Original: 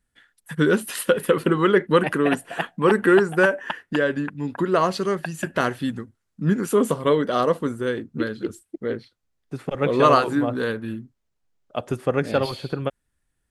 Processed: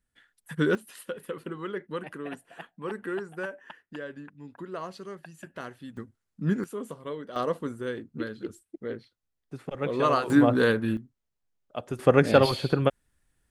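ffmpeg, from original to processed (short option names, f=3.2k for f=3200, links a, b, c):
-af "asetnsamples=n=441:p=0,asendcmd='0.75 volume volume -17dB;5.97 volume volume -5.5dB;6.64 volume volume -17dB;7.36 volume volume -8dB;10.3 volume volume 3dB;10.97 volume volume -7dB;11.99 volume volume 3dB',volume=-5.5dB"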